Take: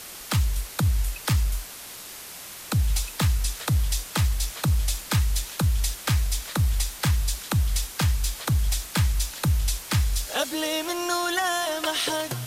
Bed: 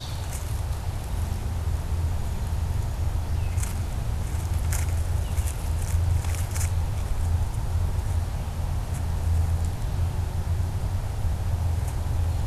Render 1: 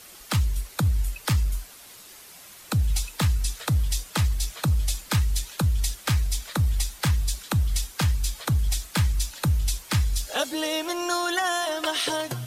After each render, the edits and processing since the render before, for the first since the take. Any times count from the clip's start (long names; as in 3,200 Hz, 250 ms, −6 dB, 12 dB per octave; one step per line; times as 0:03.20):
broadband denoise 8 dB, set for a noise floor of −40 dBFS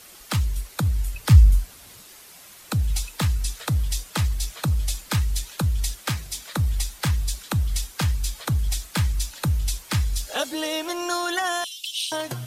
0:01.14–0:02.04: parametric band 71 Hz +12.5 dB 2.7 octaves
0:06.03–0:06.53: high-pass filter 120 Hz
0:11.64–0:12.12: Butterworth high-pass 2,600 Hz 72 dB per octave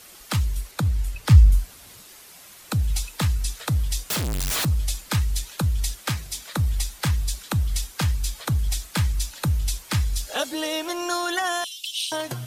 0:00.71–0:01.52: high-shelf EQ 8,700 Hz −6 dB
0:04.10–0:04.65: sign of each sample alone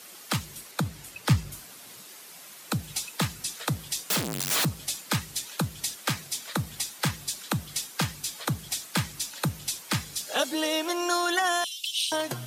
high-pass filter 140 Hz 24 dB per octave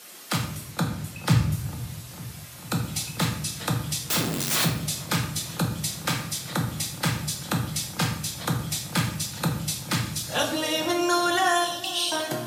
delay with a low-pass on its return 448 ms, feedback 68%, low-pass 1,000 Hz, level −14.5 dB
rectangular room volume 210 cubic metres, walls mixed, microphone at 0.89 metres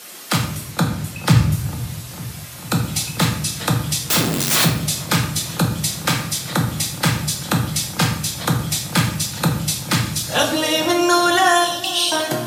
level +7.5 dB
brickwall limiter −2 dBFS, peak gain reduction 2 dB